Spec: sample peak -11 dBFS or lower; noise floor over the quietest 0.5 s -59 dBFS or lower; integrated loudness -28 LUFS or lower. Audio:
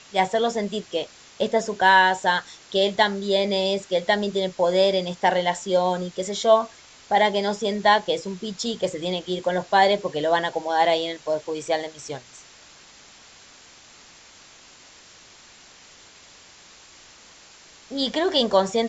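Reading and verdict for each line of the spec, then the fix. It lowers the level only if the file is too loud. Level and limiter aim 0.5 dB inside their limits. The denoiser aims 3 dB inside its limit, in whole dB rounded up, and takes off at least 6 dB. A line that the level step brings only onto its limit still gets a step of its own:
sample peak -5.0 dBFS: fail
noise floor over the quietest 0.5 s -49 dBFS: fail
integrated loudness -22.5 LUFS: fail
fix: noise reduction 7 dB, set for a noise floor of -49 dBFS; trim -6 dB; peak limiter -11.5 dBFS

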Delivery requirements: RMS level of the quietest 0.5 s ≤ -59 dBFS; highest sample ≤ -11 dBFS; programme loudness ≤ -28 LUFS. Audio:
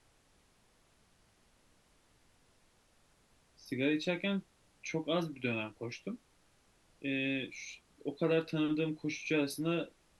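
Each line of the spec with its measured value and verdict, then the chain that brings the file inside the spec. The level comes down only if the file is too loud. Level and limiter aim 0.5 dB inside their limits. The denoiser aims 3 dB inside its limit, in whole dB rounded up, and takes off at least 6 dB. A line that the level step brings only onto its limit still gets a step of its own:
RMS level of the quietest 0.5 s -69 dBFS: pass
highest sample -19.0 dBFS: pass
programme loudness -35.5 LUFS: pass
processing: none needed

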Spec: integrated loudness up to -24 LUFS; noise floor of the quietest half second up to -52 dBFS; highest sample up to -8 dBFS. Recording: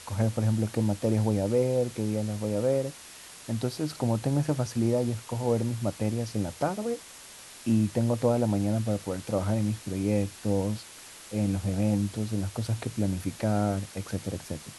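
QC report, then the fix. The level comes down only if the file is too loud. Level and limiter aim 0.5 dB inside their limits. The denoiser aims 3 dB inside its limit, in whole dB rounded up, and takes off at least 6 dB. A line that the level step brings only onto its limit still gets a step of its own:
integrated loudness -29.0 LUFS: pass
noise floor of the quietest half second -47 dBFS: fail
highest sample -11.5 dBFS: pass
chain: noise reduction 8 dB, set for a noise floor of -47 dBFS

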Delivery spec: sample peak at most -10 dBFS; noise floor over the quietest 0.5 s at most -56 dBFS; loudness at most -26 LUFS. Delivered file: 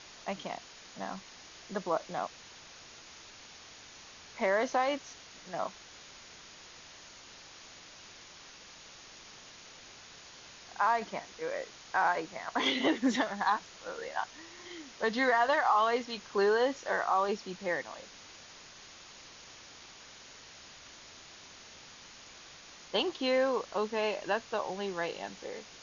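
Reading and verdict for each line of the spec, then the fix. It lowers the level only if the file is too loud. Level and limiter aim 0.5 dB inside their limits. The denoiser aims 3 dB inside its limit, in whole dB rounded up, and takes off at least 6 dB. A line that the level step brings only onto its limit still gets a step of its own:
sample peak -16.0 dBFS: pass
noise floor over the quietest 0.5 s -52 dBFS: fail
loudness -32.0 LUFS: pass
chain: noise reduction 7 dB, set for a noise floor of -52 dBFS

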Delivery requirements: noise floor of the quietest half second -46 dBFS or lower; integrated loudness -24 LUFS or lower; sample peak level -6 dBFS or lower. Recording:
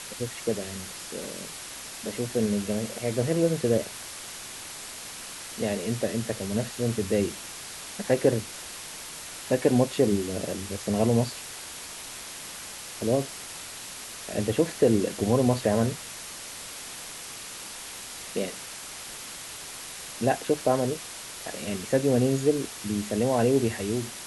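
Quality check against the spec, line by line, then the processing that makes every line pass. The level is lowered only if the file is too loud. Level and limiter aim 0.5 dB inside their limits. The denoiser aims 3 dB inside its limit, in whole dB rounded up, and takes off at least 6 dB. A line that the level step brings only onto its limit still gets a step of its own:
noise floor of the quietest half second -40 dBFS: fail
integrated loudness -28.5 LUFS: pass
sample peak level -7.5 dBFS: pass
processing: noise reduction 9 dB, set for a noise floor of -40 dBFS

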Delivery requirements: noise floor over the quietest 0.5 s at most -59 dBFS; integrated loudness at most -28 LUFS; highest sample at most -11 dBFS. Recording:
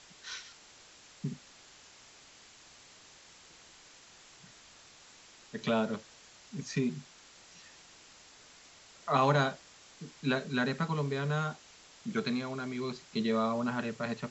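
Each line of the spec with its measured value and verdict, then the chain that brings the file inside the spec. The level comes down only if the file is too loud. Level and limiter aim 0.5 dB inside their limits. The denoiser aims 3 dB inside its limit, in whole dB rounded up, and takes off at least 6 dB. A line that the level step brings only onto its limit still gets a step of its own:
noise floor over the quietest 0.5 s -57 dBFS: fail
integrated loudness -33.5 LUFS: pass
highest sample -15.0 dBFS: pass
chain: noise reduction 6 dB, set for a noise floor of -57 dBFS

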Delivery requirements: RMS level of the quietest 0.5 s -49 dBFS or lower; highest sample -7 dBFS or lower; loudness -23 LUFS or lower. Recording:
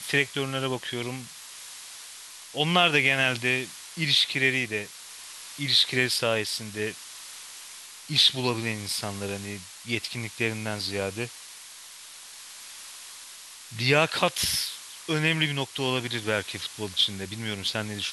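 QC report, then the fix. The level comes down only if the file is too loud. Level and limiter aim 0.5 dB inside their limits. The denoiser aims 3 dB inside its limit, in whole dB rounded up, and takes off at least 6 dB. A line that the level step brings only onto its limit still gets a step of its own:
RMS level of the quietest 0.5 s -45 dBFS: fail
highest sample -6.0 dBFS: fail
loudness -25.5 LUFS: pass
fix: noise reduction 7 dB, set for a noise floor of -45 dBFS; peak limiter -7.5 dBFS

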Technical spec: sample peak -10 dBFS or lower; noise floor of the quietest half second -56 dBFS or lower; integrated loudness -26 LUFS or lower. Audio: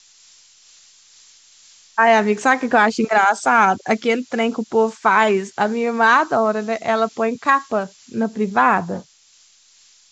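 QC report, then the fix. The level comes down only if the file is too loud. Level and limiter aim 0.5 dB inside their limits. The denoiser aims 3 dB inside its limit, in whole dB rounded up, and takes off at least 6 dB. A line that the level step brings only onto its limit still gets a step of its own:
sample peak -2.0 dBFS: fail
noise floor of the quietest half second -53 dBFS: fail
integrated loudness -17.5 LUFS: fail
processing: trim -9 dB

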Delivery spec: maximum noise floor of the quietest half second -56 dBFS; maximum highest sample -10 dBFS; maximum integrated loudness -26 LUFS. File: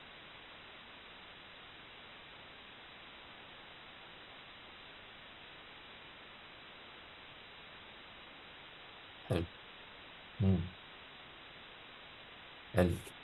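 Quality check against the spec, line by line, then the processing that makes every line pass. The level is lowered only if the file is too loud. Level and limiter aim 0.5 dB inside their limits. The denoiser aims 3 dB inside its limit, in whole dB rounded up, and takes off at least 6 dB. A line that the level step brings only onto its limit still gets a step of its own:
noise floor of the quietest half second -54 dBFS: fail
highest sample -16.5 dBFS: pass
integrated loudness -44.5 LUFS: pass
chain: noise reduction 6 dB, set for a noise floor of -54 dBFS

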